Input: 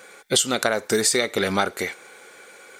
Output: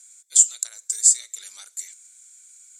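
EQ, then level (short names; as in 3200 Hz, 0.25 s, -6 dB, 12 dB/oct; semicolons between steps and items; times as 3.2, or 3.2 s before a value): band-pass 7400 Hz, Q 8.8; tilt +3.5 dB/oct; +3.0 dB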